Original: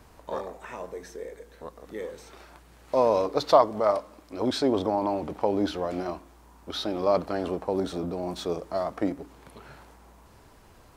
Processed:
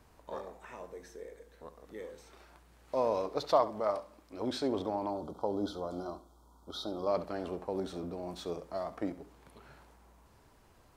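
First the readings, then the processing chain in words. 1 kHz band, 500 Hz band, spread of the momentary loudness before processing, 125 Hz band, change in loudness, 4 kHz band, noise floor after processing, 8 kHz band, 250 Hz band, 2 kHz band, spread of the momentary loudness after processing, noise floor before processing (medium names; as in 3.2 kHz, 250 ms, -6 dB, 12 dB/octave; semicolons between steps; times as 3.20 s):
-8.5 dB, -8.5 dB, 18 LU, -8.5 dB, -8.5 dB, -8.5 dB, -62 dBFS, -8.5 dB, -8.5 dB, -9.0 dB, 18 LU, -54 dBFS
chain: time-frequency box 5.10–7.08 s, 1.5–3.1 kHz -21 dB; flutter echo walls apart 11.7 m, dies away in 0.28 s; trim -8.5 dB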